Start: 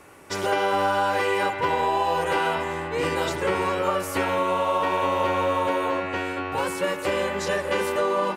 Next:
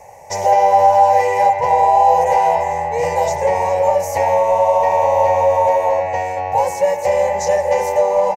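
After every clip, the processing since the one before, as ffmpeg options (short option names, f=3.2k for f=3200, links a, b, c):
-af "asoftclip=type=tanh:threshold=-15.5dB,firequalizer=gain_entry='entry(120,0);entry(320,-23);entry(500,5);entry(860,11);entry(1300,-26);entry(1900,-1);entry(3300,-16);entry(6200,6);entry(9200,-9);entry(13000,-2)':delay=0.05:min_phase=1,volume=6.5dB"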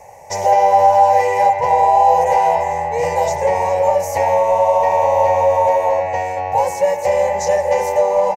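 -af anull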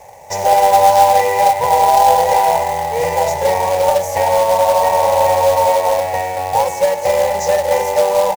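-af "acrusher=bits=3:mode=log:mix=0:aa=0.000001,volume=1dB"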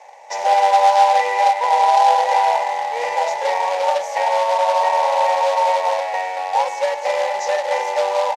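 -af "highpass=770,lowpass=4.5k"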